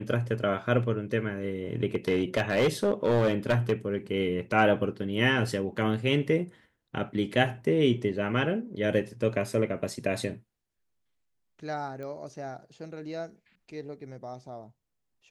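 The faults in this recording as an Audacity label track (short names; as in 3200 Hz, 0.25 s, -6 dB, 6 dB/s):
1.950000	3.730000	clipped -19 dBFS
12.030000	12.030000	pop -29 dBFS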